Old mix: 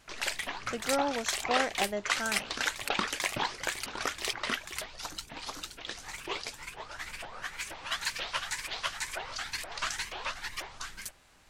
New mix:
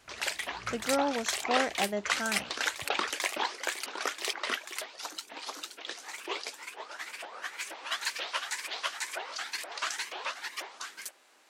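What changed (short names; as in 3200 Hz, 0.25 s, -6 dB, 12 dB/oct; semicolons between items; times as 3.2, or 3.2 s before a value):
background: add HPF 320 Hz 24 dB/oct; master: add low shelf 280 Hz +4.5 dB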